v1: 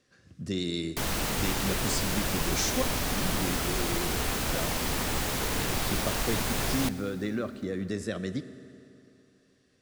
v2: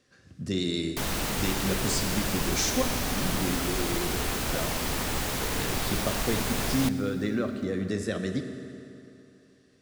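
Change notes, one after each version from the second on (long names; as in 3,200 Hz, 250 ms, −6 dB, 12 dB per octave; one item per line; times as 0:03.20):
speech: send +8.0 dB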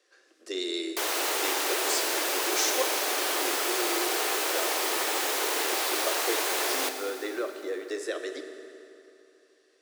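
background: send +11.5 dB
master: add Butterworth high-pass 320 Hz 72 dB per octave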